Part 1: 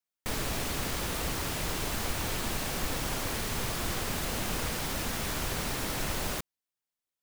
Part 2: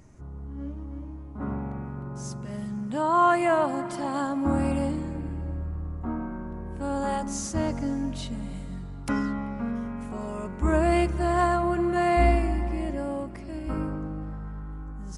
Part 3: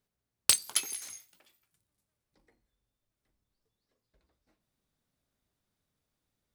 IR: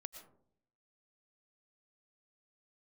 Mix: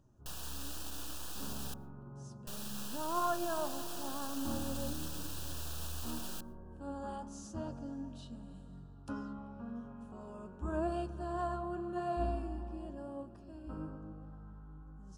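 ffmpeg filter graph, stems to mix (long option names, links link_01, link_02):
-filter_complex "[0:a]highpass=350,alimiter=level_in=3dB:limit=-24dB:level=0:latency=1:release=22,volume=-3dB,aeval=exprs='abs(val(0))':channel_layout=same,volume=-5.5dB,asplit=3[link_01][link_02][link_03];[link_01]atrim=end=1.74,asetpts=PTS-STARTPTS,afade=type=out:start_time=1.736:duration=0.004:curve=hsin[link_04];[link_02]atrim=start=1.74:end=2.47,asetpts=PTS-STARTPTS,volume=0[link_05];[link_03]atrim=start=2.47,asetpts=PTS-STARTPTS,afade=type=in:duration=0.004:curve=hsin[link_06];[link_04][link_05][link_06]concat=n=3:v=0:a=1,asplit=2[link_07][link_08];[link_08]volume=-15dB[link_09];[1:a]highshelf=frequency=5200:gain=-7.5,flanger=delay=7:depth=7:regen=65:speed=0.91:shape=triangular,volume=-11dB,asplit=2[link_10][link_11];[link_11]volume=-9dB[link_12];[3:a]atrim=start_sample=2205[link_13];[link_09][link_12]amix=inputs=2:normalize=0[link_14];[link_14][link_13]afir=irnorm=-1:irlink=0[link_15];[link_07][link_10][link_15]amix=inputs=3:normalize=0,asuperstop=centerf=2100:order=4:qfactor=2.1"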